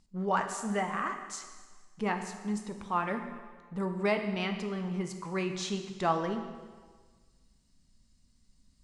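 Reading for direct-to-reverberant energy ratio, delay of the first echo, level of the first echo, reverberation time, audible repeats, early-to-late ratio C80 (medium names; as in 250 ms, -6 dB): 5.5 dB, no echo, no echo, 1.5 s, no echo, 9.0 dB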